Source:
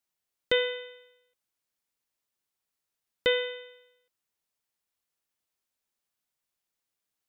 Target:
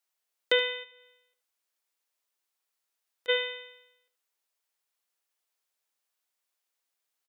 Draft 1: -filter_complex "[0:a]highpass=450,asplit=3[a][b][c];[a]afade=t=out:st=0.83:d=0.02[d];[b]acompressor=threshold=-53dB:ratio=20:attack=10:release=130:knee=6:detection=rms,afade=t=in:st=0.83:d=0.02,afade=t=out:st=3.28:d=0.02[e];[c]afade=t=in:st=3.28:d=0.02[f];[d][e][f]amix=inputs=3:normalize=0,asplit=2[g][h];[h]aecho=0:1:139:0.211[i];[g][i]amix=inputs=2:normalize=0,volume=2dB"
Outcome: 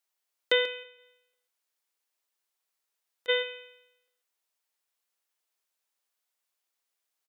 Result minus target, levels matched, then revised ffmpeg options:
echo 63 ms late
-filter_complex "[0:a]highpass=450,asplit=3[a][b][c];[a]afade=t=out:st=0.83:d=0.02[d];[b]acompressor=threshold=-53dB:ratio=20:attack=10:release=130:knee=6:detection=rms,afade=t=in:st=0.83:d=0.02,afade=t=out:st=3.28:d=0.02[e];[c]afade=t=in:st=3.28:d=0.02[f];[d][e][f]amix=inputs=3:normalize=0,asplit=2[g][h];[h]aecho=0:1:76:0.211[i];[g][i]amix=inputs=2:normalize=0,volume=2dB"

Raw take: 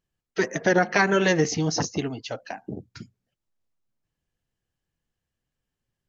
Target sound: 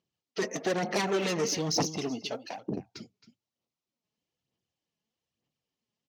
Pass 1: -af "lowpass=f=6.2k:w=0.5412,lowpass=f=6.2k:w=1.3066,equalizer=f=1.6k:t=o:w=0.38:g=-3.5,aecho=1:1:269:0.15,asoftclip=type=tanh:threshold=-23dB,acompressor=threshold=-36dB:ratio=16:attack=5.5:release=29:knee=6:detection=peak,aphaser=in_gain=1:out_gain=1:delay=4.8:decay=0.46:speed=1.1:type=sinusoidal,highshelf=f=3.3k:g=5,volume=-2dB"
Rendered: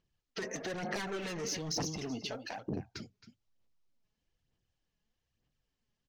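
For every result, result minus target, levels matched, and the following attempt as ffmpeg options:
compressor: peak gain reduction +11.5 dB; 125 Hz band +2.5 dB; 2000 Hz band +2.0 dB
-af "lowpass=f=6.2k:w=0.5412,lowpass=f=6.2k:w=1.3066,equalizer=f=1.6k:t=o:w=0.38:g=-3.5,aecho=1:1:269:0.15,asoftclip=type=tanh:threshold=-23dB,aphaser=in_gain=1:out_gain=1:delay=4.8:decay=0.46:speed=1.1:type=sinusoidal,highshelf=f=3.3k:g=5,volume=-2dB"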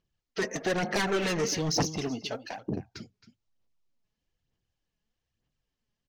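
2000 Hz band +2.5 dB; 125 Hz band +2.5 dB
-af "lowpass=f=6.2k:w=0.5412,lowpass=f=6.2k:w=1.3066,equalizer=f=1.6k:t=o:w=0.38:g=-12,aecho=1:1:269:0.15,asoftclip=type=tanh:threshold=-23dB,aphaser=in_gain=1:out_gain=1:delay=4.8:decay=0.46:speed=1.1:type=sinusoidal,highshelf=f=3.3k:g=5,volume=-2dB"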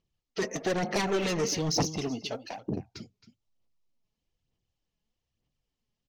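125 Hz band +3.0 dB
-af "lowpass=f=6.2k:w=0.5412,lowpass=f=6.2k:w=1.3066,equalizer=f=1.6k:t=o:w=0.38:g=-12,aecho=1:1:269:0.15,asoftclip=type=tanh:threshold=-23dB,aphaser=in_gain=1:out_gain=1:delay=4.8:decay=0.46:speed=1.1:type=sinusoidal,highpass=160,highshelf=f=3.3k:g=5,volume=-2dB"

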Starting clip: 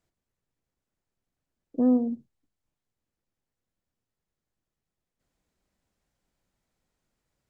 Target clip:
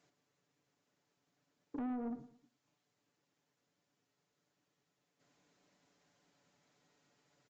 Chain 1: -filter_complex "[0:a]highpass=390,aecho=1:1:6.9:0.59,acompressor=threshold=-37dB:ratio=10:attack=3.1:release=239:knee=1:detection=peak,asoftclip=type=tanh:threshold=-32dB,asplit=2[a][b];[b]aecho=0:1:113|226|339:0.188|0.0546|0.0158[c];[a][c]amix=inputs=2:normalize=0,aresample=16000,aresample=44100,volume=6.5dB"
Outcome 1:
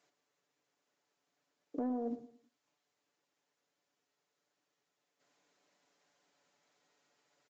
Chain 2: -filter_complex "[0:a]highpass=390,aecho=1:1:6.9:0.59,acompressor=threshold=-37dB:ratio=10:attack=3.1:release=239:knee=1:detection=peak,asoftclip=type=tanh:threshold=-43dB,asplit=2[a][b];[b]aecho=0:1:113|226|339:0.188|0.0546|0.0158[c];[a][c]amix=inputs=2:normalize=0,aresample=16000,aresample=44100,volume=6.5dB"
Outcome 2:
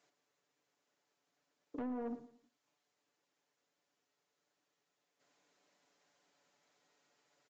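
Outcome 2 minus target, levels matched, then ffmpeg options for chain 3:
500 Hz band +5.5 dB
-filter_complex "[0:a]highpass=180,aecho=1:1:6.9:0.59,acompressor=threshold=-37dB:ratio=10:attack=3.1:release=239:knee=1:detection=peak,asoftclip=type=tanh:threshold=-43dB,asplit=2[a][b];[b]aecho=0:1:113|226|339:0.188|0.0546|0.0158[c];[a][c]amix=inputs=2:normalize=0,aresample=16000,aresample=44100,volume=6.5dB"

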